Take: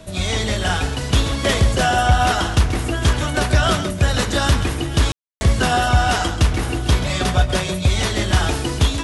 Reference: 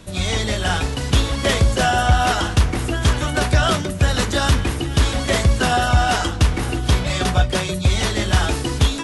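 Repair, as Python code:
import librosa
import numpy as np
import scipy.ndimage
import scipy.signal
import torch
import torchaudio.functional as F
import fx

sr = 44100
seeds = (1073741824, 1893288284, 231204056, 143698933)

y = fx.notch(x, sr, hz=640.0, q=30.0)
y = fx.fix_ambience(y, sr, seeds[0], print_start_s=0.0, print_end_s=0.5, start_s=5.12, end_s=5.41)
y = fx.fix_echo_inverse(y, sr, delay_ms=133, level_db=-11.5)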